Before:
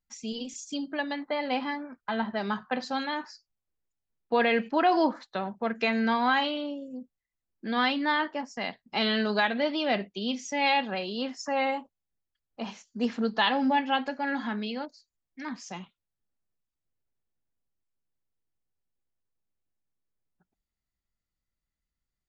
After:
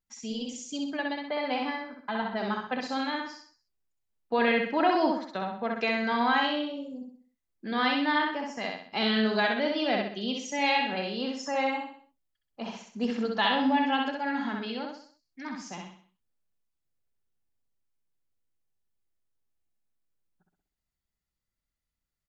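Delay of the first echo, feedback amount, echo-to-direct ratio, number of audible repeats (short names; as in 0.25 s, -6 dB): 64 ms, 42%, -2.0 dB, 5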